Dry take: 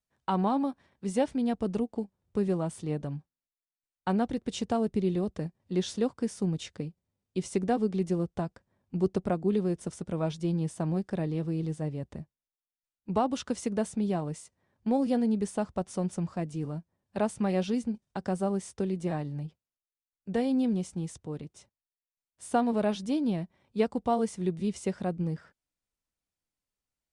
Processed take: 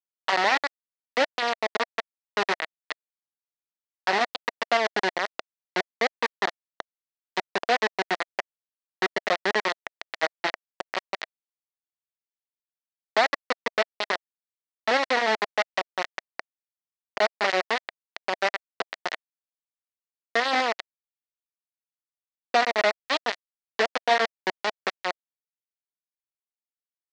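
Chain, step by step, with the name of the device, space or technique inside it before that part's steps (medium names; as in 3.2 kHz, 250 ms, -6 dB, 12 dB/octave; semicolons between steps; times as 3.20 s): hand-held game console (bit crusher 4-bit; cabinet simulation 480–5300 Hz, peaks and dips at 660 Hz +5 dB, 1.9 kHz +9 dB, 4.2 kHz +3 dB); trim +2.5 dB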